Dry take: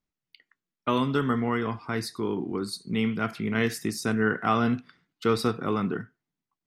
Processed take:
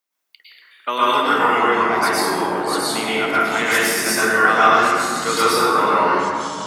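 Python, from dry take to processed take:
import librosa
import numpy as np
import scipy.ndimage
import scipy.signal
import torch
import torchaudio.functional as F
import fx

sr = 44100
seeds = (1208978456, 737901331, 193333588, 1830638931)

y = scipy.signal.sosfilt(scipy.signal.butter(2, 630.0, 'highpass', fs=sr, output='sos'), x)
y = fx.high_shelf(y, sr, hz=10000.0, db=9.5)
y = fx.rev_plate(y, sr, seeds[0], rt60_s=1.8, hf_ratio=0.5, predelay_ms=95, drr_db=-9.0)
y = fx.echo_pitch(y, sr, ms=148, semitones=-4, count=3, db_per_echo=-6.0)
y = y * librosa.db_to_amplitude(5.0)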